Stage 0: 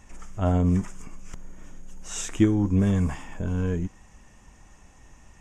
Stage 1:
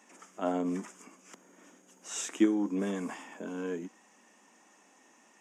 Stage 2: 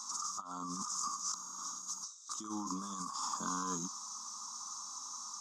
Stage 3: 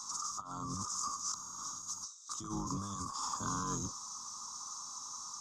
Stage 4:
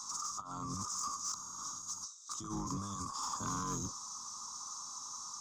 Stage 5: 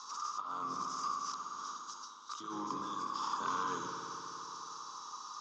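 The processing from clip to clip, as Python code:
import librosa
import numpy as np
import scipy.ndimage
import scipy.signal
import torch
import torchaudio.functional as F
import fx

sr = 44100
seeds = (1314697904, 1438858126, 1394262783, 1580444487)

y1 = scipy.signal.sosfilt(scipy.signal.butter(6, 230.0, 'highpass', fs=sr, output='sos'), x)
y1 = y1 * librosa.db_to_amplitude(-3.5)
y2 = fx.curve_eq(y1, sr, hz=(110.0, 430.0, 660.0, 1200.0, 1800.0, 2800.0, 4000.0, 6000.0, 9600.0), db=(0, -24, -20, 14, -30, -25, 12, 14, -2))
y2 = fx.over_compress(y2, sr, threshold_db=-47.0, ratio=-1.0)
y2 = y2 * librosa.db_to_amplitude(5.0)
y3 = fx.octave_divider(y2, sr, octaves=1, level_db=0.0)
y4 = 10.0 ** (-27.5 / 20.0) * np.tanh(y3 / 10.0 ** (-27.5 / 20.0))
y5 = fx.cabinet(y4, sr, low_hz=400.0, low_slope=12, high_hz=4500.0, hz=(440.0, 710.0, 1600.0, 2900.0), db=(5, -7, 5, 7))
y5 = fx.rev_spring(y5, sr, rt60_s=3.3, pass_ms=(57,), chirp_ms=45, drr_db=2.0)
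y5 = y5 * librosa.db_to_amplitude(3.0)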